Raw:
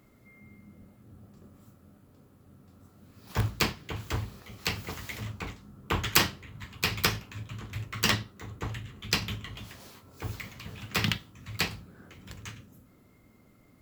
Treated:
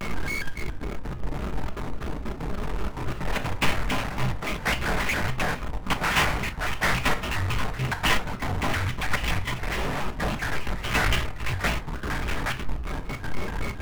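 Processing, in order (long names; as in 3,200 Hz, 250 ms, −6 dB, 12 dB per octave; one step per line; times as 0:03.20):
0:01.59–0:03.20: high-pass filter 98 Hz → 260 Hz 24 dB per octave
in parallel at +2 dB: upward compression, threshold −37 dBFS
on the sum: single-sideband voice off tune −220 Hz 160–2,800 Hz
chorus effect 1.9 Hz, delay 16.5 ms, depth 6.5 ms
power curve on the samples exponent 0.35
gate pattern "xxxxxx.xx.xx.x." 187 BPM −12 dB
convolution reverb RT60 0.50 s, pre-delay 6 ms, DRR 7.5 dB
pitch modulation by a square or saw wave square 3.6 Hz, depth 250 cents
level −8 dB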